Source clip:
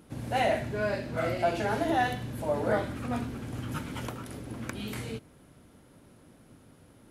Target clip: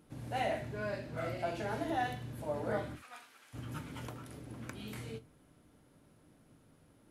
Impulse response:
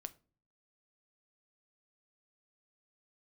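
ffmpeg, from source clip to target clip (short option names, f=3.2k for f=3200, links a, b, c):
-filter_complex "[0:a]asplit=3[a][b][c];[a]afade=t=out:st=2.95:d=0.02[d];[b]highpass=1.3k,afade=t=in:st=2.95:d=0.02,afade=t=out:st=3.53:d=0.02[e];[c]afade=t=in:st=3.53:d=0.02[f];[d][e][f]amix=inputs=3:normalize=0[g];[1:a]atrim=start_sample=2205,atrim=end_sample=3528[h];[g][h]afir=irnorm=-1:irlink=0,volume=-4dB"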